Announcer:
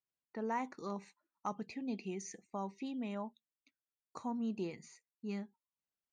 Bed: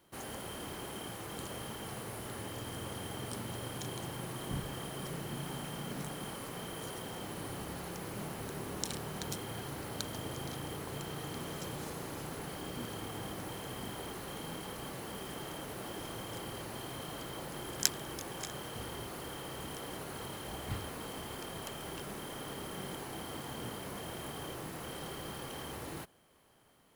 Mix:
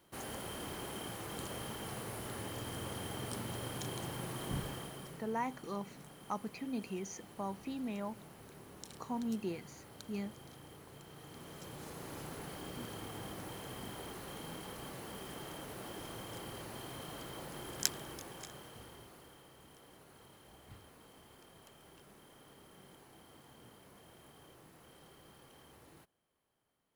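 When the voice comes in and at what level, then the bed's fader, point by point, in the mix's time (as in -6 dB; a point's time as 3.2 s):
4.85 s, +0.5 dB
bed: 4.66 s -0.5 dB
5.35 s -13 dB
11.06 s -13 dB
12.16 s -3.5 dB
17.97 s -3.5 dB
19.53 s -16.5 dB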